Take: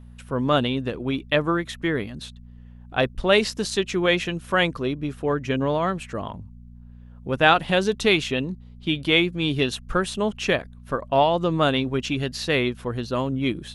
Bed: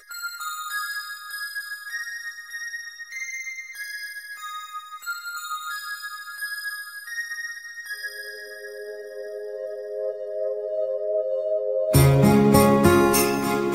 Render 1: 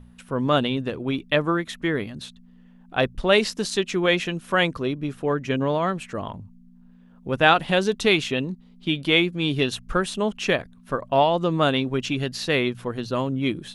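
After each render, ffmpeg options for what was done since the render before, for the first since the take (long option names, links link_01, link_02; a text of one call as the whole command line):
ffmpeg -i in.wav -af "bandreject=frequency=60:width_type=h:width=4,bandreject=frequency=120:width_type=h:width=4" out.wav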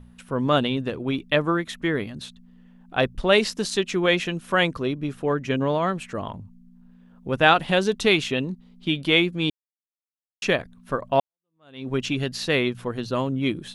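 ffmpeg -i in.wav -filter_complex "[0:a]asplit=4[link_01][link_02][link_03][link_04];[link_01]atrim=end=9.5,asetpts=PTS-STARTPTS,afade=type=out:start_time=9.496:duration=0.004:curve=hsin[link_05];[link_02]atrim=start=9.5:end=10.42,asetpts=PTS-STARTPTS,volume=0[link_06];[link_03]atrim=start=10.42:end=11.2,asetpts=PTS-STARTPTS,afade=type=in:duration=0.004:curve=hsin,afade=type=out:start_time=0.776:duration=0.004:curve=hsin[link_07];[link_04]atrim=start=11.2,asetpts=PTS-STARTPTS,afade=type=in:duration=0.69:curve=exp[link_08];[link_05][link_06][link_07][link_08]concat=n=4:v=0:a=1" out.wav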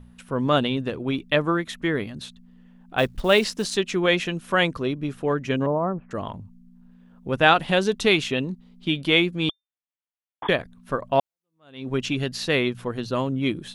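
ffmpeg -i in.wav -filter_complex "[0:a]asettb=1/sr,asplit=3[link_01][link_02][link_03];[link_01]atrim=end=2.984[link_04];[link_02]atrim=start=2.98:end=3.76,asetpts=PTS-STARTPTS,afade=type=in:duration=0.004:curve=qsin,afade=type=out:start_time=0.776:duration=0.004:curve=qsin,acrusher=bits=7:mode=log:mix=0:aa=0.000001[link_05];[link_03]atrim=start=3.756[link_06];[link_04][link_05]acrossfade=duration=0.004:curve1=hsin:curve2=qsin[link_07];[link_07][link_06]acrossfade=duration=0.004:curve1=qsin:curve2=hsin,asettb=1/sr,asplit=3[link_08][link_09][link_10];[link_08]atrim=end=5.664[link_11];[link_09]atrim=start=5.66:end=6.11,asetpts=PTS-STARTPTS,afade=type=in:duration=0.004:curve=qsin,afade=type=out:start_time=0.446:duration=0.004:curve=qsin,lowpass=frequency=1100:width=0.5412,lowpass=frequency=1100:width=1.3066[link_12];[link_10]atrim=start=6.106[link_13];[link_11][link_12]acrossfade=duration=0.004:curve1=hsin:curve2=qsin[link_14];[link_14][link_13]acrossfade=duration=0.004:curve1=qsin:curve2=hsin,asettb=1/sr,asplit=3[link_15][link_16][link_17];[link_15]atrim=end=9.494[link_18];[link_16]atrim=start=9.49:end=10.49,asetpts=PTS-STARTPTS,afade=type=in:duration=0.004:curve=qsin,afade=type=out:start_time=0.996:duration=0.004:curve=qsin,lowpass=frequency=3100:width_type=q:width=0.5098,lowpass=frequency=3100:width_type=q:width=0.6013,lowpass=frequency=3100:width_type=q:width=0.9,lowpass=frequency=3100:width_type=q:width=2.563,afreqshift=-3600[link_19];[link_17]atrim=start=10.486[link_20];[link_18][link_19]acrossfade=duration=0.004:curve1=hsin:curve2=qsin[link_21];[link_21][link_20]acrossfade=duration=0.004:curve1=qsin:curve2=hsin" out.wav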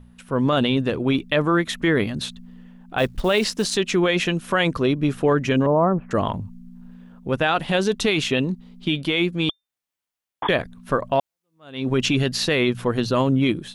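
ffmpeg -i in.wav -af "dynaudnorm=framelen=100:gausssize=7:maxgain=9dB,alimiter=limit=-10dB:level=0:latency=1:release=14" out.wav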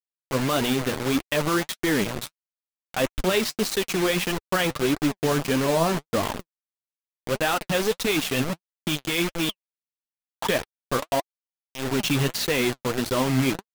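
ffmpeg -i in.wav -af "acrusher=bits=3:mix=0:aa=0.000001,flanger=delay=2:depth=6.6:regen=49:speed=1.6:shape=triangular" out.wav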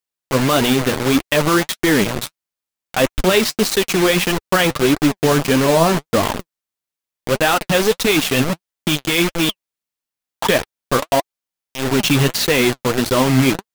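ffmpeg -i in.wav -af "volume=8dB" out.wav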